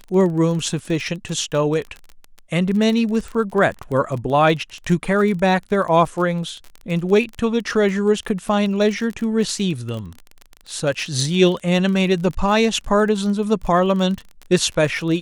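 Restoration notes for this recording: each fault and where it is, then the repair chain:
surface crackle 28 per second −26 dBFS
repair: click removal

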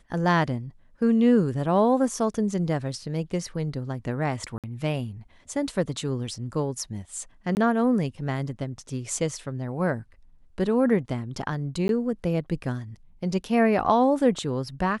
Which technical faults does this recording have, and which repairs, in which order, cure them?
0:04.58–0:04.64: drop-out 57 ms
0:07.55–0:07.57: drop-out 19 ms
0:11.88–0:11.89: drop-out 12 ms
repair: repair the gap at 0:04.58, 57 ms
repair the gap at 0:07.55, 19 ms
repair the gap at 0:11.88, 12 ms

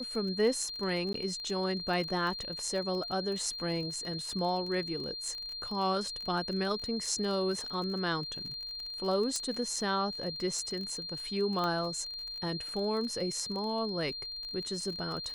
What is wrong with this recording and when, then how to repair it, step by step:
surface crackle 30 per second −37 dBFS
whistle 4,200 Hz −38 dBFS
0:01.13–0:01.14: drop-out 13 ms
0:09.36: click −20 dBFS
0:11.64: click −20 dBFS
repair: click removal
notch filter 4,200 Hz, Q 30
repair the gap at 0:01.13, 13 ms

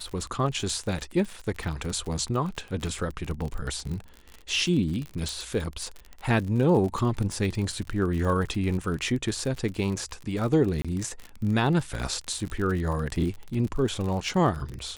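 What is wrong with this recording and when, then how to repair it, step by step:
surface crackle 48 per second −31 dBFS
0:05.29: click
0:10.82–0:10.85: drop-out 26 ms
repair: click removal
repair the gap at 0:10.82, 26 ms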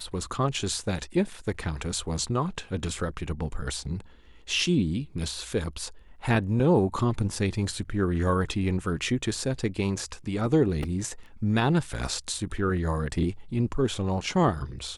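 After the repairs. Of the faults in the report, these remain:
none of them is left

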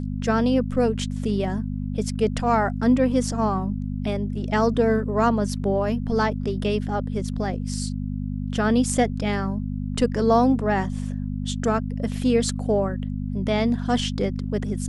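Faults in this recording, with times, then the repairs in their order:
mains hum 50 Hz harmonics 5 −28 dBFS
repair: hum removal 50 Hz, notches 5

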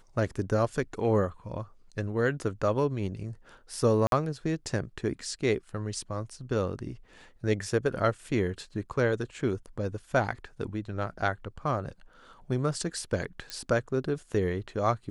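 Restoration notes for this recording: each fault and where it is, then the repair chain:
0:04.07–0:04.12: drop-out 52 ms
0:13.50: click −19 dBFS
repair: click removal
repair the gap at 0:04.07, 52 ms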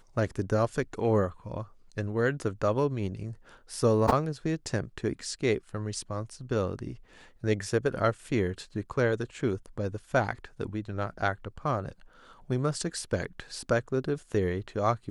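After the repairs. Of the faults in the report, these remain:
0:13.50: click

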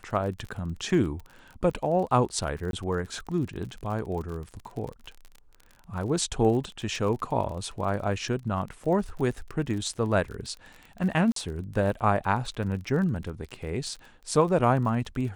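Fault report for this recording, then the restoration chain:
surface crackle 38 per second −35 dBFS
0:02.71–0:02.73: drop-out 22 ms
0:11.32–0:11.36: drop-out 43 ms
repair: click removal
repair the gap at 0:02.71, 22 ms
repair the gap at 0:11.32, 43 ms

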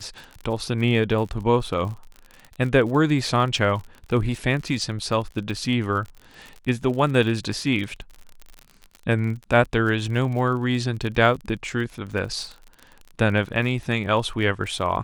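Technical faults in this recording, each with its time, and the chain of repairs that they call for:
surface crackle 43 per second −31 dBFS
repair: click removal

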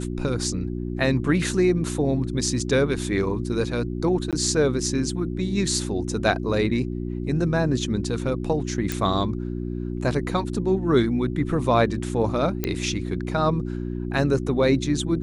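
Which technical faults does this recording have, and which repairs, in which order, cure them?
mains hum 60 Hz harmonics 6 −29 dBFS
0:04.31–0:04.33: drop-out 17 ms
0:08.92: click
0:12.64: click −9 dBFS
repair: click removal
hum removal 60 Hz, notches 6
repair the gap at 0:04.31, 17 ms

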